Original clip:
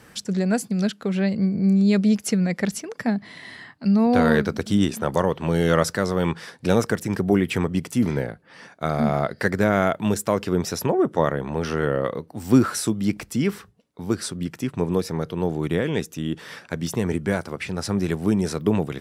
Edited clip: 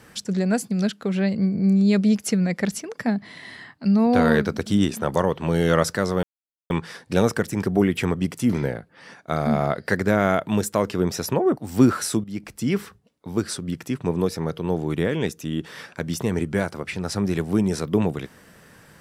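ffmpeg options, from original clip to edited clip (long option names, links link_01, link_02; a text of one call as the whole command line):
ffmpeg -i in.wav -filter_complex "[0:a]asplit=4[link_01][link_02][link_03][link_04];[link_01]atrim=end=6.23,asetpts=PTS-STARTPTS,afade=type=out:start_time=6.226:duration=0.004:curve=hsin,apad=pad_dur=0.47[link_05];[link_02]atrim=start=6.23:end=11.102,asetpts=PTS-STARTPTS,afade=type=in:duration=0.004:curve=hsin[link_06];[link_03]atrim=start=12.298:end=12.97,asetpts=PTS-STARTPTS,afade=type=out:start_time=0.668:duration=0.004:curve=hsin:silence=0.188365[link_07];[link_04]atrim=start=12.97,asetpts=PTS-STARTPTS,afade=type=in:duration=0.49:silence=0.188365[link_08];[link_05][link_06]concat=n=2:v=0:a=1[link_09];[link_07][link_08]concat=n=2:v=0:a=1[link_10];[link_09][link_10]acrossfade=duration=0.004:curve1=hsin:curve2=hsin" out.wav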